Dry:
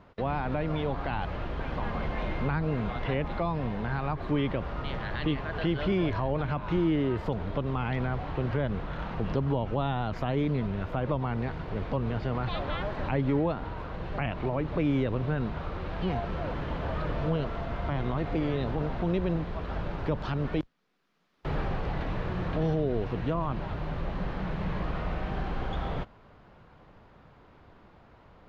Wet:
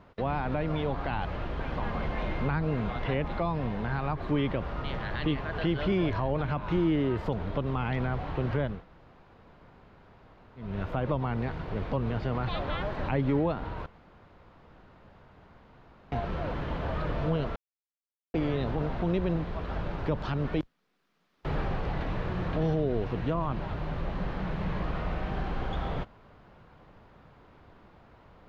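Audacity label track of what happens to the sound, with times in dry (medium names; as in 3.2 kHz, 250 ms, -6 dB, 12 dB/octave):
8.740000	10.670000	room tone, crossfade 0.24 s
13.860000	16.120000	room tone
17.560000	18.340000	mute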